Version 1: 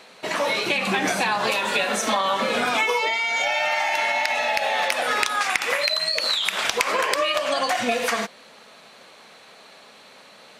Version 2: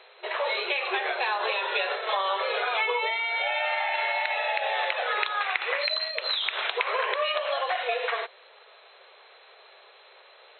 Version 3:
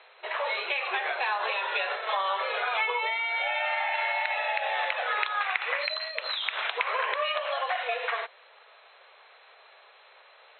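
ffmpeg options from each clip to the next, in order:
-af "afftfilt=real='re*between(b*sr/4096,360,4200)':imag='im*between(b*sr/4096,360,4200)':win_size=4096:overlap=0.75,volume=0.596"
-af "highpass=610,lowpass=3300"

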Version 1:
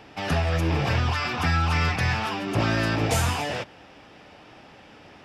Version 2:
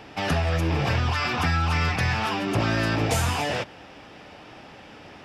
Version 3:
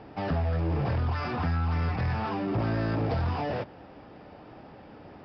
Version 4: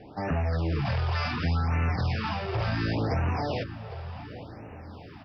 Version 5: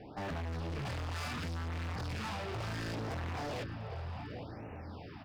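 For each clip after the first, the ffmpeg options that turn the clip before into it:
-af "acompressor=threshold=0.0501:ratio=2,volume=1.5"
-af "equalizer=f=3100:w=0.61:g=-14.5,aresample=11025,asoftclip=type=tanh:threshold=0.0794,aresample=44100"
-filter_complex "[0:a]acrossover=split=2100[s0][s1];[s1]dynaudnorm=f=180:g=3:m=2.82[s2];[s0][s2]amix=inputs=2:normalize=0,asplit=2[s3][s4];[s4]adelay=805,lowpass=f=1400:p=1,volume=0.266,asplit=2[s5][s6];[s6]adelay=805,lowpass=f=1400:p=1,volume=0.47,asplit=2[s7][s8];[s8]adelay=805,lowpass=f=1400:p=1,volume=0.47,asplit=2[s9][s10];[s10]adelay=805,lowpass=f=1400:p=1,volume=0.47,asplit=2[s11][s12];[s12]adelay=805,lowpass=f=1400:p=1,volume=0.47[s13];[s3][s5][s7][s9][s11][s13]amix=inputs=6:normalize=0,afftfilt=real='re*(1-between(b*sr/1024,230*pow(4200/230,0.5+0.5*sin(2*PI*0.69*pts/sr))/1.41,230*pow(4200/230,0.5+0.5*sin(2*PI*0.69*pts/sr))*1.41))':imag='im*(1-between(b*sr/1024,230*pow(4200/230,0.5+0.5*sin(2*PI*0.69*pts/sr))/1.41,230*pow(4200/230,0.5+0.5*sin(2*PI*0.69*pts/sr))*1.41))':win_size=1024:overlap=0.75"
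-af "volume=53.1,asoftclip=hard,volume=0.0188,volume=0.75"

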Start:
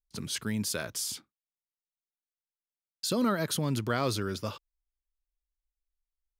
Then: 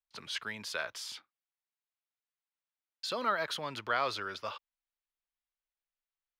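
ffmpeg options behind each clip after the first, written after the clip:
-filter_complex "[0:a]acrossover=split=590 4200:gain=0.0794 1 0.1[s0][s1][s2];[s0][s1][s2]amix=inputs=3:normalize=0,volume=1.33"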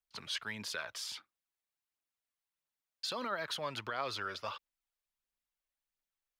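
-af "alimiter=level_in=1.5:limit=0.0631:level=0:latency=1:release=172,volume=0.668,aphaser=in_gain=1:out_gain=1:delay=1.9:decay=0.36:speed=1.5:type=triangular"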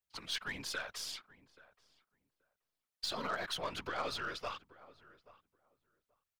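-filter_complex "[0:a]afftfilt=real='hypot(re,im)*cos(2*PI*random(0))':imag='hypot(re,im)*sin(2*PI*random(1))':win_size=512:overlap=0.75,aeval=exprs='0.0316*(cos(1*acos(clip(val(0)/0.0316,-1,1)))-cos(1*PI/2))+0.00126*(cos(6*acos(clip(val(0)/0.0316,-1,1)))-cos(6*PI/2))+0.00224*(cos(8*acos(clip(val(0)/0.0316,-1,1)))-cos(8*PI/2))':c=same,asplit=2[s0][s1];[s1]adelay=830,lowpass=f=1300:p=1,volume=0.119,asplit=2[s2][s3];[s3]adelay=830,lowpass=f=1300:p=1,volume=0.16[s4];[s0][s2][s4]amix=inputs=3:normalize=0,volume=1.88"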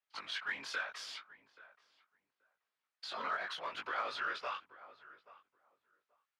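-af "alimiter=level_in=2.24:limit=0.0631:level=0:latency=1:release=377,volume=0.447,flanger=delay=18.5:depth=3.5:speed=0.78,bandpass=f=1500:t=q:w=0.86:csg=0,volume=2.82"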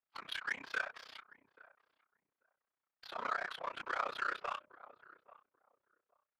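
-af "bandreject=f=60:t=h:w=6,bandreject=f=120:t=h:w=6,bandreject=f=180:t=h:w=6,bandreject=f=240:t=h:w=6,bandreject=f=300:t=h:w=6,bandreject=f=360:t=h:w=6,bandreject=f=420:t=h:w=6,bandreject=f=480:t=h:w=6,bandreject=f=540:t=h:w=6,bandreject=f=600:t=h:w=6,adynamicsmooth=sensitivity=7.5:basefreq=1800,tremolo=f=31:d=0.947,volume=1.78"

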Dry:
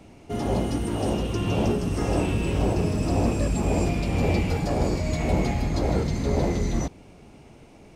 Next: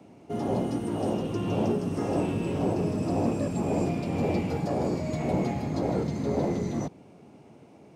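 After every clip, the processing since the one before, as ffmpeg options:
-filter_complex "[0:a]acrossover=split=100|1200|2100[s0][s1][s2][s3];[s0]aeval=exprs='val(0)*sin(2*PI*220*n/s)':c=same[s4];[s1]acontrast=86[s5];[s4][s5][s2][s3]amix=inputs=4:normalize=0,volume=0.376"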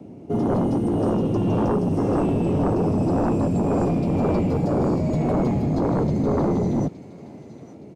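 -filter_complex "[0:a]acrossover=split=550[s0][s1];[s0]aeval=exprs='0.168*sin(PI/2*3.16*val(0)/0.168)':c=same[s2];[s1]aecho=1:1:868|1736|2604|3472:0.211|0.0972|0.0447|0.0206[s3];[s2][s3]amix=inputs=2:normalize=0,volume=0.794"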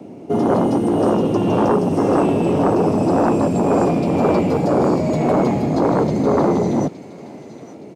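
-af "highpass=f=360:p=1,volume=2.82"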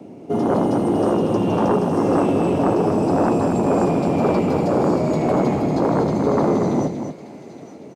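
-af "aecho=1:1:237:0.447,volume=0.75"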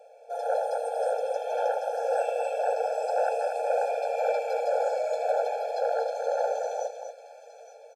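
-af "afftfilt=real='re*eq(mod(floor(b*sr/1024/450),2),1)':imag='im*eq(mod(floor(b*sr/1024/450),2),1)':win_size=1024:overlap=0.75,volume=0.668"

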